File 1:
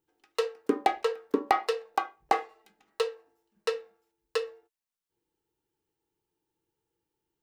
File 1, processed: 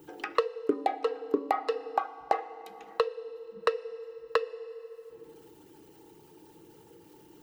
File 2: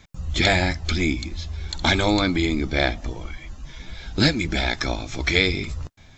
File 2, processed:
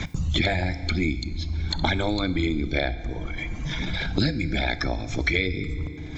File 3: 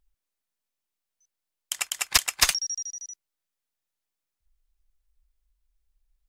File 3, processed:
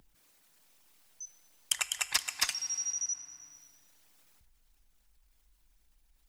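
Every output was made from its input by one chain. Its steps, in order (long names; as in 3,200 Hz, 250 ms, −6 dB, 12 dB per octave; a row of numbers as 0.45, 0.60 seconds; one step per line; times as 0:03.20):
spectral envelope exaggerated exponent 1.5
feedback delay network reverb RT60 1.2 s, low-frequency decay 1.3×, high-frequency decay 0.85×, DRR 13.5 dB
multiband upward and downward compressor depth 100%
normalise the peak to −9 dBFS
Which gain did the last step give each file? 0.0, −3.5, −6.0 decibels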